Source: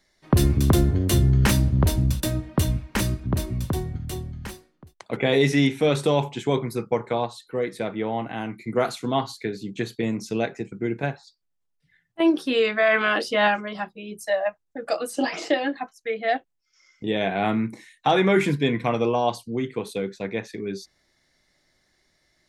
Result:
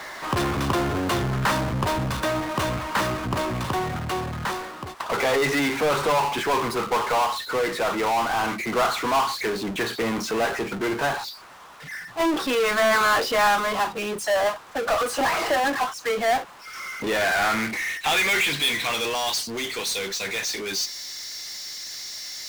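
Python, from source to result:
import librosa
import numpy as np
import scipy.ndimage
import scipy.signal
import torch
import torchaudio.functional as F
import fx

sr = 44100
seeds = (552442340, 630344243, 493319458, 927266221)

y = fx.filter_sweep_bandpass(x, sr, from_hz=1100.0, to_hz=5600.0, start_s=16.89, end_s=19.37, q=2.3)
y = fx.power_curve(y, sr, exponent=0.35)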